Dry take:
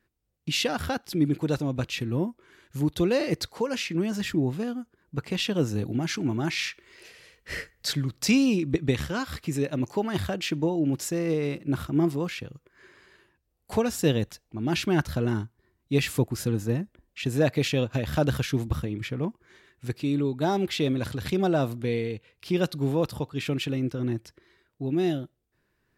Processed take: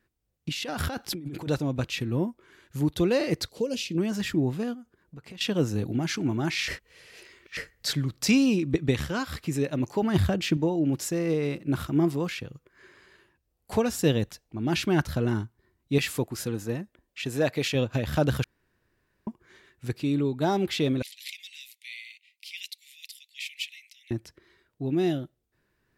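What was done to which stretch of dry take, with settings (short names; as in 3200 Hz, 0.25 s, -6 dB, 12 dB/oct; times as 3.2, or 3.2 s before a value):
0.49–1.5 negative-ratio compressor -33 dBFS
3.49–3.98 band shelf 1300 Hz -15.5 dB
4.74–5.41 compressor 5:1, threshold -42 dBFS
6.68–7.57 reverse
10.02–10.57 low shelf 250 Hz +9.5 dB
11.68–12.39 mismatched tape noise reduction encoder only
15.98–17.75 low shelf 240 Hz -8.5 dB
18.44–19.27 room tone
21.02–24.11 steep high-pass 2000 Hz 96 dB/oct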